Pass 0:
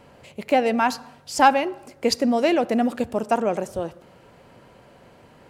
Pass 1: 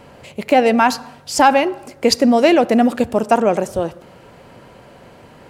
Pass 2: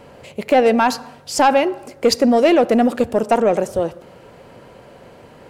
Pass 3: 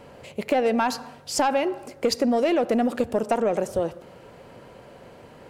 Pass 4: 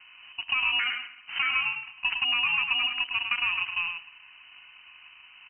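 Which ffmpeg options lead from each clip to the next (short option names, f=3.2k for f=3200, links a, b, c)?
-af "alimiter=level_in=8.5dB:limit=-1dB:release=50:level=0:latency=1,volume=-1dB"
-af "equalizer=f=480:t=o:w=0.78:g=4,asoftclip=type=tanh:threshold=-3dB,volume=-1.5dB"
-af "acompressor=threshold=-15dB:ratio=6,volume=-3.5dB"
-af "acrusher=samples=17:mix=1:aa=0.000001,aecho=1:1:106:0.501,lowpass=f=2.6k:t=q:w=0.5098,lowpass=f=2.6k:t=q:w=0.6013,lowpass=f=2.6k:t=q:w=0.9,lowpass=f=2.6k:t=q:w=2.563,afreqshift=-3100,volume=-5.5dB"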